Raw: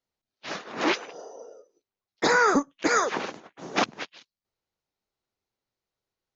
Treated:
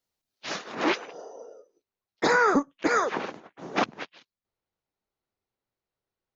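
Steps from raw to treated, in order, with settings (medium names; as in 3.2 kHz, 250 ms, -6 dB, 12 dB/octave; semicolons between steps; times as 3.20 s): treble shelf 4.4 kHz +7 dB, from 0.75 s -6.5 dB, from 2.36 s -11.5 dB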